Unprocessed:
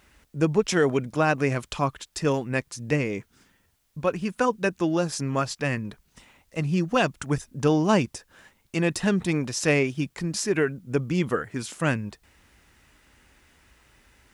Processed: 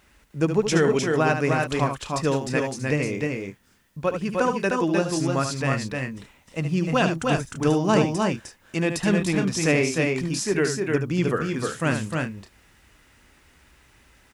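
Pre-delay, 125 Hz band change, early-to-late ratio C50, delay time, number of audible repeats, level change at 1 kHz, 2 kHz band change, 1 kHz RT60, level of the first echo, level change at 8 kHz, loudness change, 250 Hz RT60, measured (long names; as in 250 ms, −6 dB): no reverb audible, +2.0 dB, no reverb audible, 73 ms, 3, +2.5 dB, +2.5 dB, no reverb audible, −8.0 dB, +2.5 dB, +2.0 dB, no reverb audible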